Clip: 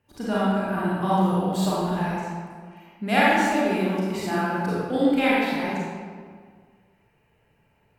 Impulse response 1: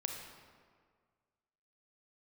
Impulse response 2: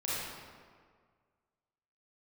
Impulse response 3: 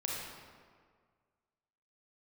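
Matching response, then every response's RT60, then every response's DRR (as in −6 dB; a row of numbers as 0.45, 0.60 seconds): 2; 1.8, 1.8, 1.8 seconds; 2.5, −9.0, −3.5 decibels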